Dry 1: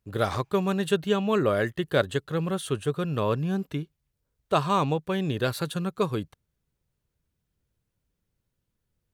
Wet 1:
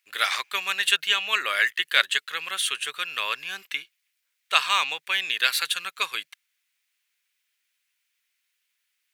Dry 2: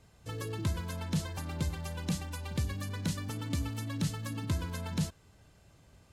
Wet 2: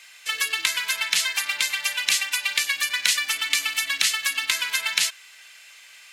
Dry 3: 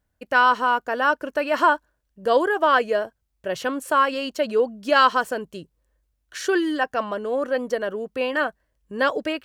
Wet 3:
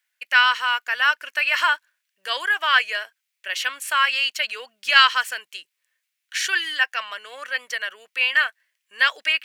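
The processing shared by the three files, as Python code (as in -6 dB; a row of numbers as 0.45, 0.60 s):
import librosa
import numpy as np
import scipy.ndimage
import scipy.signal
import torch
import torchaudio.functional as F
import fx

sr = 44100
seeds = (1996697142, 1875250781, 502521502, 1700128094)

y = fx.highpass_res(x, sr, hz=2200.0, q=2.3)
y = y * 10.0 ** (-1.5 / 20.0) / np.max(np.abs(y))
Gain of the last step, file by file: +10.0, +19.5, +6.0 dB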